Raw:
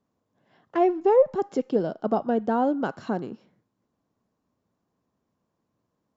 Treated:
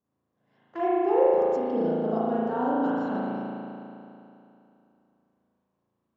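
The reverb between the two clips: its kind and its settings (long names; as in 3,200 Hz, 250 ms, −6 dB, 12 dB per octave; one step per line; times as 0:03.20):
spring reverb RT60 2.8 s, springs 36 ms, chirp 80 ms, DRR −9 dB
level −10.5 dB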